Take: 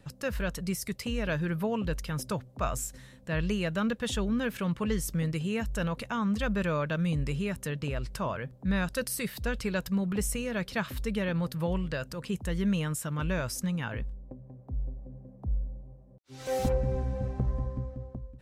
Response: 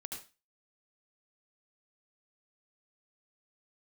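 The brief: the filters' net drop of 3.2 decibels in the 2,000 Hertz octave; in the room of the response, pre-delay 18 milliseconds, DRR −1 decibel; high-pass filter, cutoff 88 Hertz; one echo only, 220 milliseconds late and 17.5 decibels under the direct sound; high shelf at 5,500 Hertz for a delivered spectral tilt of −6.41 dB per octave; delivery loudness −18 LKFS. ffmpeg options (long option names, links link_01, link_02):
-filter_complex "[0:a]highpass=88,equalizer=frequency=2000:width_type=o:gain=-4,highshelf=frequency=5500:gain=-3,aecho=1:1:220:0.133,asplit=2[link_01][link_02];[1:a]atrim=start_sample=2205,adelay=18[link_03];[link_02][link_03]afir=irnorm=-1:irlink=0,volume=3dB[link_04];[link_01][link_04]amix=inputs=2:normalize=0,volume=11dB"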